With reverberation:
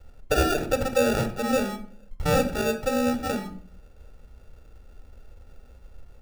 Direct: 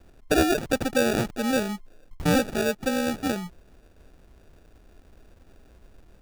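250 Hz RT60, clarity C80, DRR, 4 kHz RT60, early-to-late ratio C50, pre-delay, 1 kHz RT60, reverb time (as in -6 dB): 0.70 s, 15.5 dB, 7.0 dB, 0.30 s, 11.5 dB, 4 ms, 0.45 s, 0.50 s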